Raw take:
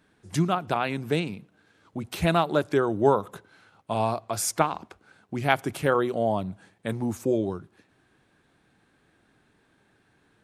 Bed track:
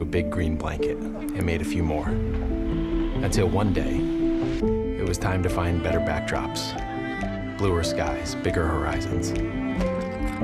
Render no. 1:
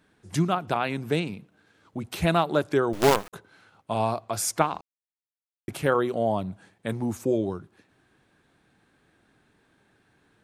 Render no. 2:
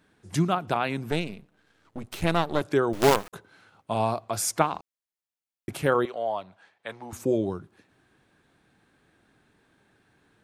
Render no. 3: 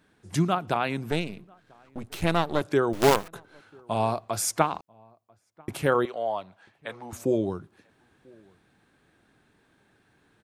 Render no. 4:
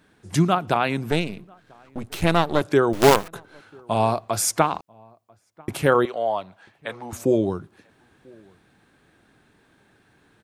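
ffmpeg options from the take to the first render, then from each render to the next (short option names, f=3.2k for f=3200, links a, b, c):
-filter_complex "[0:a]asettb=1/sr,asplit=3[a][b][c];[a]atrim=end=2.934[d];[b]atrim=start=2.93:end=3.33,asetpts=PTS-STARTPTS,afade=t=in:d=0.004:c=qsin,afade=t=out:st=0.396:d=0.004:c=qsin,acrusher=bits=4:dc=4:mix=0:aa=0.000001[e];[c]atrim=start=3.326[f];[d][e]acrossfade=d=0.004:c1=hsin:c2=qsin[g];[g][f]acrossfade=d=0.004:c1=qsin:c2=hsin,asplit=3[h][i][j];[h]atrim=end=4.81,asetpts=PTS-STARTPTS,afade=t=out:st=4.806:d=0.004:c=hsin[k];[i]atrim=start=4.81:end=5.68,asetpts=PTS-STARTPTS,volume=0[l];[j]atrim=start=5.68,asetpts=PTS-STARTPTS,afade=t=in:d=0.004:c=hsin[m];[k][l][m]concat=n=3:v=0:a=1"
-filter_complex "[0:a]asettb=1/sr,asplit=3[a][b][c];[a]atrim=end=1.114[d];[b]atrim=start=1.11:end=2.61,asetpts=PTS-STARTPTS,afade=t=in:d=0.004:c=qsin,afade=t=out:st=1.496:d=0.004:c=qsin,aeval=exprs='if(lt(val(0),0),0.251*val(0),val(0))':c=same[e];[c]atrim=start=2.606[f];[d][e]acrossfade=d=0.004:c1=hsin:c2=qsin[g];[g][f]acrossfade=d=0.004:c1=qsin:c2=hsin,asettb=1/sr,asplit=3[h][i][j];[h]atrim=end=6.054[k];[i]atrim=start=6.05:end=7.13,asetpts=PTS-STARTPTS,afade=t=in:d=0.004:c=qsin,afade=t=out:st=1.076:d=0.004:c=qsin,acrossover=split=530 5400:gain=0.1 1 0.158[l][m][n];[l][m][n]amix=inputs=3:normalize=0[o];[j]atrim=start=7.126[p];[k][o]acrossfade=d=0.004:c1=hsin:c2=qsin[q];[q][p]acrossfade=d=0.004:c1=qsin:c2=hsin"
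-filter_complex "[0:a]asplit=2[a][b];[b]adelay=991.3,volume=-28dB,highshelf=f=4k:g=-22.3[c];[a][c]amix=inputs=2:normalize=0"
-af "volume=5dB,alimiter=limit=-2dB:level=0:latency=1"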